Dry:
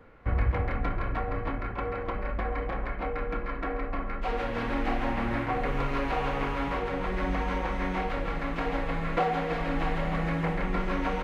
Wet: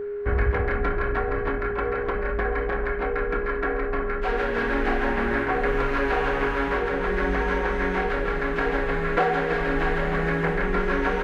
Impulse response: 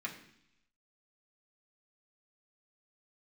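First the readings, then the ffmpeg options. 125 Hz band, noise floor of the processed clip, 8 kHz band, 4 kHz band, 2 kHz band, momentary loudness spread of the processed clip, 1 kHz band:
+1.5 dB, −28 dBFS, can't be measured, +3.5 dB, +9.5 dB, 3 LU, +4.0 dB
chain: -af "equalizer=frequency=125:width_type=o:width=0.33:gain=-9,equalizer=frequency=400:width_type=o:width=0.33:gain=5,equalizer=frequency=1600:width_type=o:width=0.33:gain=11,aeval=exprs='val(0)+0.0282*sin(2*PI*410*n/s)':channel_layout=same,volume=3dB"

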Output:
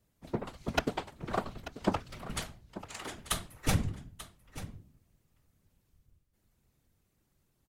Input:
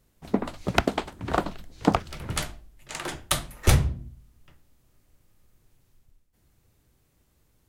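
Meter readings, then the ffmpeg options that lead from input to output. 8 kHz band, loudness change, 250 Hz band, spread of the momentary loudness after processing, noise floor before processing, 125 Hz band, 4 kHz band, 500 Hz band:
−7.5 dB, −8.5 dB, −8.0 dB, 15 LU, −67 dBFS, −9.0 dB, −7.5 dB, −7.5 dB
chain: -af "afftfilt=real='hypot(re,im)*cos(2*PI*random(0))':imag='hypot(re,im)*sin(2*PI*random(1))':win_size=512:overlap=0.75,aecho=1:1:888:0.188,volume=-2dB"

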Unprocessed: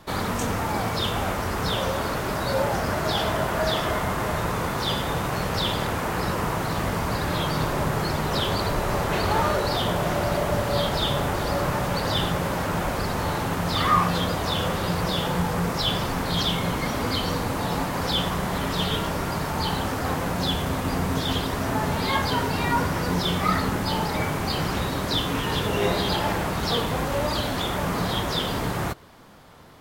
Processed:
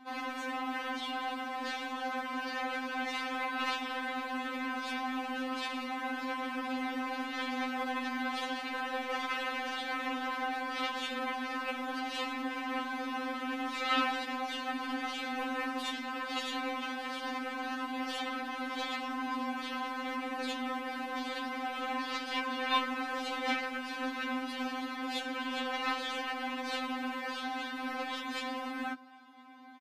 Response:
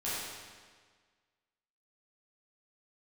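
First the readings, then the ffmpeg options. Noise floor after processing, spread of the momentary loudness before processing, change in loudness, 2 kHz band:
−41 dBFS, 3 LU, −10.5 dB, −5.5 dB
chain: -filter_complex "[0:a]aecho=1:1:6.2:0.94,afreqshift=100,aeval=exprs='0.562*(cos(1*acos(clip(val(0)/0.562,-1,1)))-cos(1*PI/2))+0.0158*(cos(6*acos(clip(val(0)/0.562,-1,1)))-cos(6*PI/2))+0.178*(cos(7*acos(clip(val(0)/0.562,-1,1)))-cos(7*PI/2))':channel_layout=same,acrossover=split=250 3800:gain=0.0891 1 0.141[link_01][link_02][link_03];[link_01][link_02][link_03]amix=inputs=3:normalize=0,aresample=32000,aresample=44100,afftfilt=real='re*3.46*eq(mod(b,12),0)':imag='im*3.46*eq(mod(b,12),0)':win_size=2048:overlap=0.75,volume=-7dB"

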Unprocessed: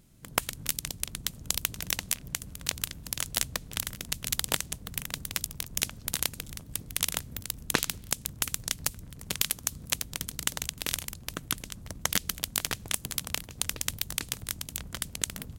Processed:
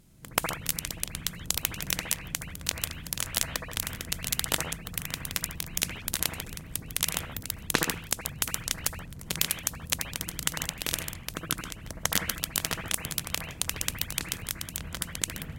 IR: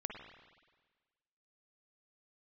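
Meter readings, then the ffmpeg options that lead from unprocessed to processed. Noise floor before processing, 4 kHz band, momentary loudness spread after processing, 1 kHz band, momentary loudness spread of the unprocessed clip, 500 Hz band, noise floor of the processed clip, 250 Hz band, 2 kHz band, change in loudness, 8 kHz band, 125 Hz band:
−49 dBFS, +1.0 dB, 6 LU, +2.5 dB, 6 LU, +3.0 dB, −45 dBFS, +3.0 dB, +2.5 dB, +1.0 dB, +0.5 dB, +2.5 dB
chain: -filter_complex "[1:a]atrim=start_sample=2205,afade=type=out:start_time=0.19:duration=0.01,atrim=end_sample=8820,asetrate=33957,aresample=44100[link_01];[0:a][link_01]afir=irnorm=-1:irlink=0,volume=2.5dB"

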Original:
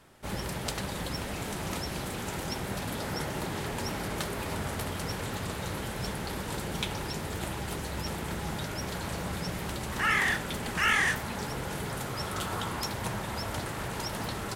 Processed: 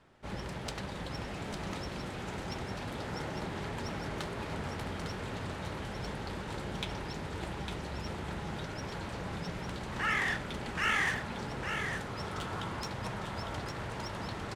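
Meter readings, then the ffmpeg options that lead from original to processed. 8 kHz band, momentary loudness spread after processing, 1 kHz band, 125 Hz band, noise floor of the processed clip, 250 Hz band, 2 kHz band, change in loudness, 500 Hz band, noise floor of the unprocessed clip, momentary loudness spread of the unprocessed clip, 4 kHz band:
−11.0 dB, 8 LU, −4.0 dB, −3.5 dB, −41 dBFS, −3.5 dB, −4.0 dB, −4.5 dB, −3.5 dB, −37 dBFS, 8 LU, −5.5 dB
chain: -af "adynamicsmooth=sensitivity=3.5:basefreq=5200,aecho=1:1:854:0.473,volume=-4.5dB"

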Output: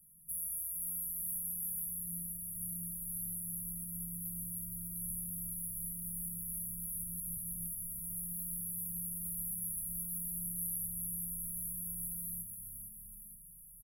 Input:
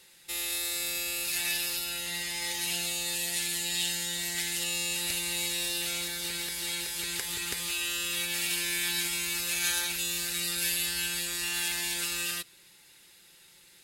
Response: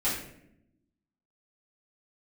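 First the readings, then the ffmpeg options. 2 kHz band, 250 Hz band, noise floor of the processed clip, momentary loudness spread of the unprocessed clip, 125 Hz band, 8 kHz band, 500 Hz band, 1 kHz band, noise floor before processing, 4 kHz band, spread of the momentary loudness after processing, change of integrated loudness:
below −40 dB, −4.0 dB, −55 dBFS, 4 LU, +1.0 dB, −8.0 dB, below −40 dB, below −40 dB, −57 dBFS, below −40 dB, 4 LU, −8.5 dB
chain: -filter_complex "[0:a]acompressor=threshold=-35dB:ratio=3,asplit=2[link_01][link_02];[link_02]adelay=13,volume=-5.5dB[link_03];[link_01][link_03]amix=inputs=2:normalize=0,asplit=8[link_04][link_05][link_06][link_07][link_08][link_09][link_10][link_11];[link_05]adelay=466,afreqshift=-70,volume=-6.5dB[link_12];[link_06]adelay=932,afreqshift=-140,volume=-11.5dB[link_13];[link_07]adelay=1398,afreqshift=-210,volume=-16.6dB[link_14];[link_08]adelay=1864,afreqshift=-280,volume=-21.6dB[link_15];[link_09]adelay=2330,afreqshift=-350,volume=-26.6dB[link_16];[link_10]adelay=2796,afreqshift=-420,volume=-31.7dB[link_17];[link_11]adelay=3262,afreqshift=-490,volume=-36.7dB[link_18];[link_04][link_12][link_13][link_14][link_15][link_16][link_17][link_18]amix=inputs=8:normalize=0,asplit=2[link_19][link_20];[1:a]atrim=start_sample=2205,asetrate=57330,aresample=44100[link_21];[link_20][link_21]afir=irnorm=-1:irlink=0,volume=-12.5dB[link_22];[link_19][link_22]amix=inputs=2:normalize=0,afftfilt=real='re*(1-between(b*sr/4096,220,10000))':imag='im*(1-between(b*sr/4096,220,10000))':win_size=4096:overlap=0.75"

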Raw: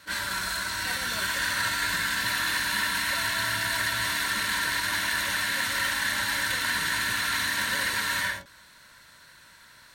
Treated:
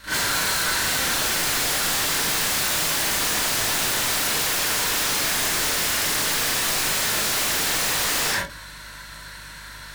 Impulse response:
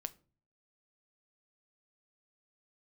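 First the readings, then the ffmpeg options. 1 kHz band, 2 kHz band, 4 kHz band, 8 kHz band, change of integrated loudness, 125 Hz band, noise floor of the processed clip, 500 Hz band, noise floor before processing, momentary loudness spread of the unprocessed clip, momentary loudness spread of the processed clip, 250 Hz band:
+3.5 dB, 0.0 dB, +5.5 dB, +10.5 dB, +5.5 dB, +5.5 dB, −40 dBFS, +10.5 dB, −53 dBFS, 3 LU, 18 LU, +6.5 dB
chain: -filter_complex "[0:a]aeval=exprs='val(0)+0.001*(sin(2*PI*50*n/s)+sin(2*PI*2*50*n/s)/2+sin(2*PI*3*50*n/s)/3+sin(2*PI*4*50*n/s)/4+sin(2*PI*5*50*n/s)/5)':channel_layout=same,aeval=exprs='0.0282*(abs(mod(val(0)/0.0282+3,4)-2)-1)':channel_layout=same,asplit=2[link_01][link_02];[1:a]atrim=start_sample=2205,adelay=38[link_03];[link_02][link_03]afir=irnorm=-1:irlink=0,volume=9dB[link_04];[link_01][link_04]amix=inputs=2:normalize=0,volume=5.5dB"

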